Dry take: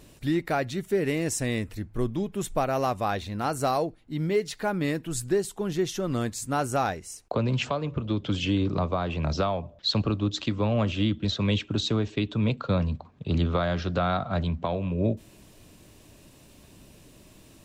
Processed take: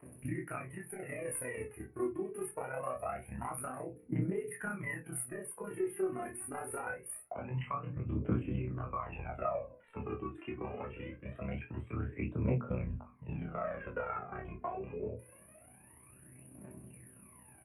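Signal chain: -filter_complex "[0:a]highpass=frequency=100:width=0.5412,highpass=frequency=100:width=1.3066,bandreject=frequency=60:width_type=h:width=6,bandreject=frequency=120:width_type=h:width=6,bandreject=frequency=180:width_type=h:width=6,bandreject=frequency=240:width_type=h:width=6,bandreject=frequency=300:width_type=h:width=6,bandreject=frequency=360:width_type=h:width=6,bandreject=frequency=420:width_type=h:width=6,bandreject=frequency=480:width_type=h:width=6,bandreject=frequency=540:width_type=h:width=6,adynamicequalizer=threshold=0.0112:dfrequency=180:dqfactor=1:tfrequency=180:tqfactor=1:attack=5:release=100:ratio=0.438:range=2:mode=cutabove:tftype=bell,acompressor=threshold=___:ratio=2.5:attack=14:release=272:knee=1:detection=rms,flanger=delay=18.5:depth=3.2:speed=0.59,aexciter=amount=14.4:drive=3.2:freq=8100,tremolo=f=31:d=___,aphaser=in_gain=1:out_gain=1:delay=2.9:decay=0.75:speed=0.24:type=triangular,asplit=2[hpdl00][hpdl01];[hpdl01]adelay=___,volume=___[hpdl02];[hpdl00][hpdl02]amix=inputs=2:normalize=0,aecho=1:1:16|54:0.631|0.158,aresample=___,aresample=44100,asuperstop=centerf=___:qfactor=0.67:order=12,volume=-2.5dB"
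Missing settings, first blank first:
-32dB, 0.947, 24, -6dB, 22050, 5400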